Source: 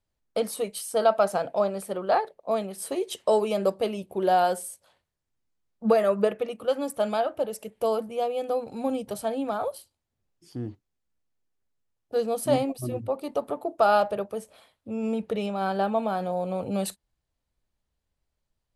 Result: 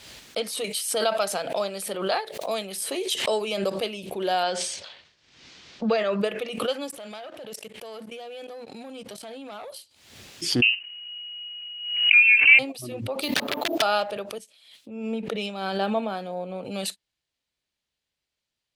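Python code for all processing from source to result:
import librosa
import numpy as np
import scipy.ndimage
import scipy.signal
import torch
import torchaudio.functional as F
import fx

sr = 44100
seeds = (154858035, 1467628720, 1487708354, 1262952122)

y = fx.chain(x, sr, fx.high_shelf(hz=10000.0, db=10.5),
    fx.band_squash(depth_pct=40), at=(0.64, 3.28))
y = fx.chain(y, sr, fx.lowpass(hz=5900.0, slope=24),
    fx.sustainer(db_per_s=62.0), at=(4.43, 6.21))
y = fx.chain(y, sr, fx.level_steps(step_db=19),
    fx.leveller(passes=1), at=(6.9, 9.7))
y = fx.chain(y, sr, fx.notch(hz=1600.0, q=14.0),
    fx.freq_invert(carrier_hz=2900),
    fx.env_flatten(amount_pct=50), at=(10.62, 12.59))
y = fx.chain(y, sr, fx.overflow_wrap(gain_db=20.5),
    fx.resample_bad(factor=3, down='filtered', up='hold'),
    fx.band_squash(depth_pct=100), at=(13.22, 13.82))
y = fx.chain(y, sr, fx.cheby1_highpass(hz=200.0, order=2),
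    fx.low_shelf(hz=380.0, db=5.5),
    fx.band_widen(depth_pct=100), at=(14.38, 16.65))
y = fx.weighting(y, sr, curve='D')
y = fx.pre_swell(y, sr, db_per_s=64.0)
y = y * 10.0 ** (-3.5 / 20.0)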